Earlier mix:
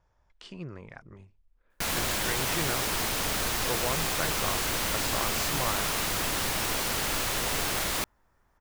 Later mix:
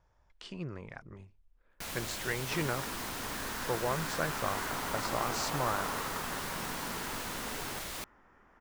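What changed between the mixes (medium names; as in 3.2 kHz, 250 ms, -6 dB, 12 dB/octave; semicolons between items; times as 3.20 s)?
first sound -11.0 dB; second sound +11.5 dB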